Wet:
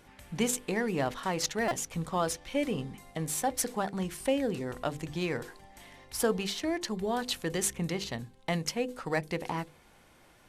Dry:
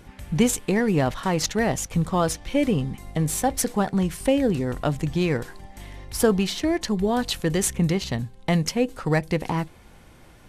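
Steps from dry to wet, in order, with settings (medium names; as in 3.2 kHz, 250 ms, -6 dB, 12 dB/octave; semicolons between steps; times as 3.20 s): bass shelf 200 Hz -10 dB; hum notches 50/100/150/200/250/300/350/400/450/500 Hz; buffer glitch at 1.68 s, samples 128, times 10; trim -5.5 dB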